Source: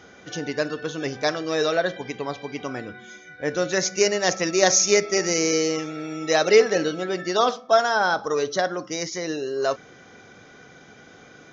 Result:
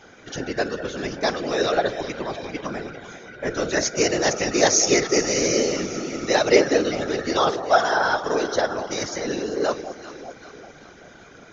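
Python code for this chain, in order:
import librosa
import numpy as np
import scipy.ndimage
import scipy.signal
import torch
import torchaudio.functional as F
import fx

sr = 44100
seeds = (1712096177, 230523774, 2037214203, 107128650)

y = fx.echo_alternate(x, sr, ms=196, hz=870.0, feedback_pct=73, wet_db=-9.5)
y = fx.whisperise(y, sr, seeds[0])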